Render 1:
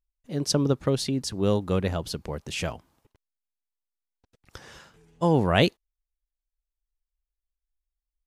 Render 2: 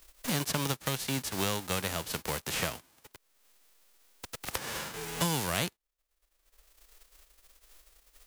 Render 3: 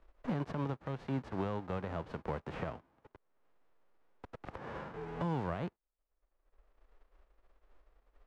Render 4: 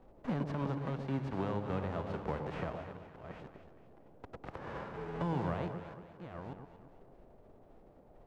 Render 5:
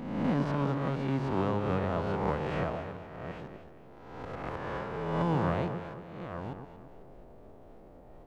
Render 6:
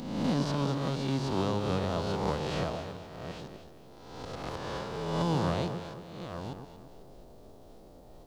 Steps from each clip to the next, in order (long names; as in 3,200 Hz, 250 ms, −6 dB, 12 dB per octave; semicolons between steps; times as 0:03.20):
spectral envelope flattened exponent 0.3; multiband upward and downward compressor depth 100%; level −7.5 dB
brickwall limiter −19.5 dBFS, peak gain reduction 7 dB; low-pass filter 1,100 Hz 12 dB per octave; level −1 dB
delay that plays each chunk backwards 594 ms, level −9 dB; noise in a band 57–700 Hz −62 dBFS; delay that swaps between a low-pass and a high-pass 116 ms, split 860 Hz, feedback 63%, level −6 dB
peak hold with a rise ahead of every peak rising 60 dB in 1.13 s; level +4 dB
high shelf with overshoot 3,000 Hz +12 dB, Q 1.5